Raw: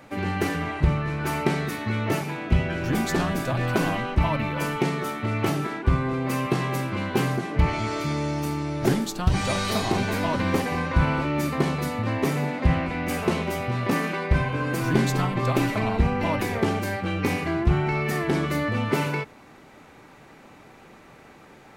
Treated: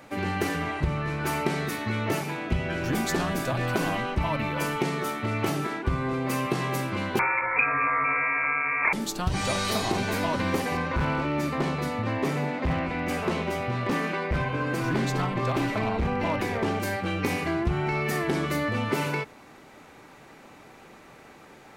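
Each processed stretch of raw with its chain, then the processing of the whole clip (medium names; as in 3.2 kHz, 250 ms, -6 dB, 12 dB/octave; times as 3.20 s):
7.19–8.93 s: peaking EQ 1.4 kHz +14.5 dB 1.1 oct + frequency inversion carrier 2.5 kHz
10.77–16.80 s: treble shelf 7.2 kHz -12 dB + hard clipper -18 dBFS
whole clip: tone controls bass -3 dB, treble +2 dB; compression 3:1, threshold -22 dBFS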